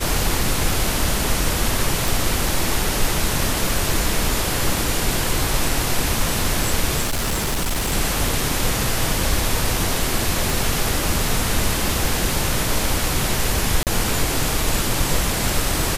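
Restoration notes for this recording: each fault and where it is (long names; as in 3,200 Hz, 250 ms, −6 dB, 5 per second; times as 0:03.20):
0:02.08: click
0:07.01–0:07.93: clipping −18 dBFS
0:10.50: click
0:13.83–0:13.87: drop-out 38 ms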